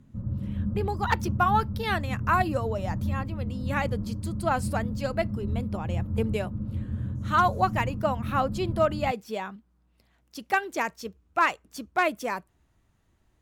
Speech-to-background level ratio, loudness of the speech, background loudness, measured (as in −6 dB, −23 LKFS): 3.5 dB, −29.0 LKFS, −32.5 LKFS